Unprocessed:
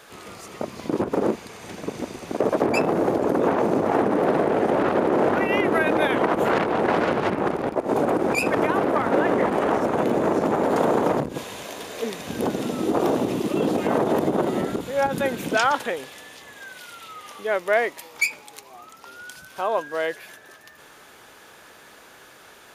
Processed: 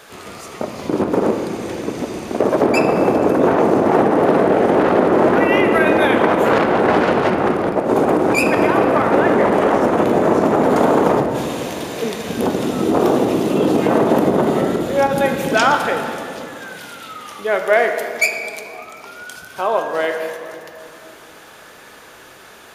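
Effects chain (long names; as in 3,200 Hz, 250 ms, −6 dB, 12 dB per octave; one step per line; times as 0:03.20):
on a send: convolution reverb RT60 2.7 s, pre-delay 5 ms, DRR 4 dB
on the sum: level +5 dB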